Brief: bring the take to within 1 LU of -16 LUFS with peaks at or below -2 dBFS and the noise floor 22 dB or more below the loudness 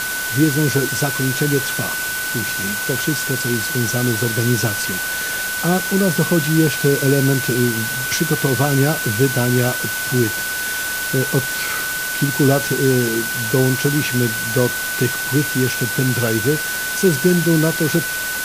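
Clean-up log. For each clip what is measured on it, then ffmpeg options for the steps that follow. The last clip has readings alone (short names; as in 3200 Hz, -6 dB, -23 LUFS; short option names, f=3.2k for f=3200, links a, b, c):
steady tone 1500 Hz; tone level -23 dBFS; noise floor -23 dBFS; noise floor target -40 dBFS; loudness -18.0 LUFS; peak -2.5 dBFS; loudness target -16.0 LUFS
-> -af "bandreject=f=1.5k:w=30"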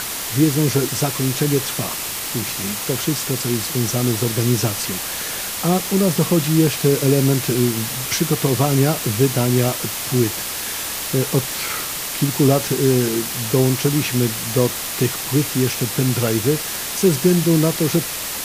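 steady tone none; noise floor -27 dBFS; noise floor target -41 dBFS
-> -af "afftdn=nr=14:nf=-27"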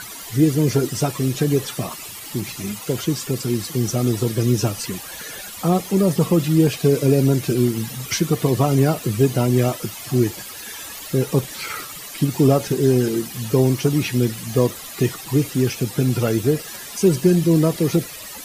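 noise floor -35 dBFS; noise floor target -42 dBFS
-> -af "afftdn=nr=7:nf=-35"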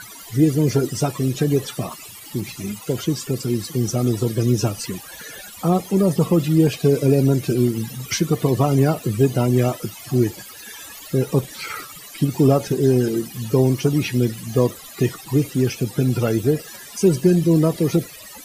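noise floor -40 dBFS; noise floor target -43 dBFS
-> -af "afftdn=nr=6:nf=-40"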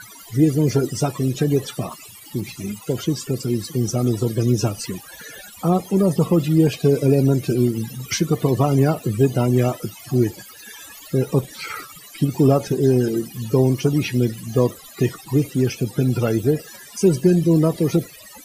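noise floor -43 dBFS; loudness -20.5 LUFS; peak -4.0 dBFS; loudness target -16.0 LUFS
-> -af "volume=4.5dB,alimiter=limit=-2dB:level=0:latency=1"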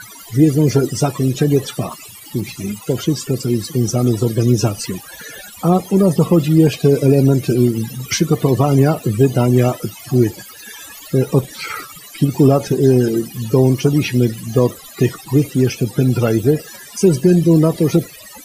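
loudness -16.0 LUFS; peak -2.0 dBFS; noise floor -38 dBFS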